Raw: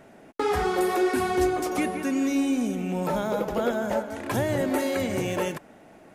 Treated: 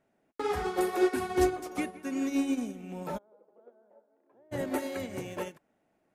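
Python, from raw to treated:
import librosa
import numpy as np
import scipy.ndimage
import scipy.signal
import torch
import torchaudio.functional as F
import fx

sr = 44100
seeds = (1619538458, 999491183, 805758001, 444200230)

y = fx.ladder_bandpass(x, sr, hz=520.0, resonance_pct=25, at=(3.17, 4.51), fade=0.02)
y = fx.upward_expand(y, sr, threshold_db=-35.0, expansion=2.5)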